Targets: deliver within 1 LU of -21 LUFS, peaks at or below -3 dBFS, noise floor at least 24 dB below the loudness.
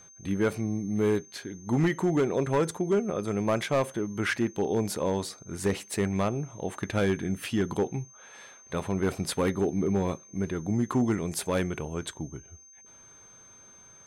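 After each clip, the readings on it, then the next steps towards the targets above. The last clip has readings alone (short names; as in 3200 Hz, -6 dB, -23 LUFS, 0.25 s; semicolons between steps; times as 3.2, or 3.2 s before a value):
clipped 0.8%; flat tops at -18.5 dBFS; steady tone 6300 Hz; tone level -51 dBFS; loudness -29.0 LUFS; peak -18.5 dBFS; loudness target -21.0 LUFS
-> clip repair -18.5 dBFS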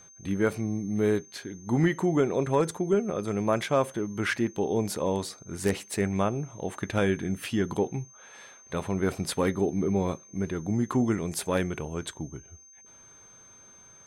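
clipped 0.0%; steady tone 6300 Hz; tone level -51 dBFS
-> notch 6300 Hz, Q 30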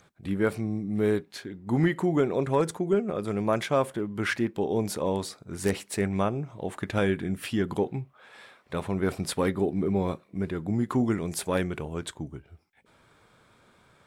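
steady tone none; loudness -28.5 LUFS; peak -9.5 dBFS; loudness target -21.0 LUFS
-> gain +7.5 dB; limiter -3 dBFS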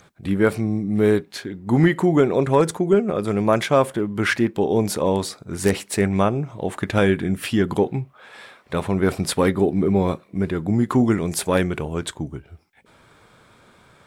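loudness -21.0 LUFS; peak -3.0 dBFS; noise floor -54 dBFS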